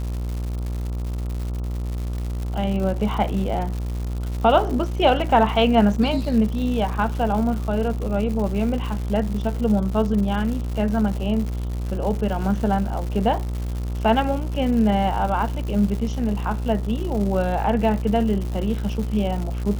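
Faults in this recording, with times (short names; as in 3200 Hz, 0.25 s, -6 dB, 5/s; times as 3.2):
buzz 60 Hz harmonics 23 -26 dBFS
crackle 220/s -29 dBFS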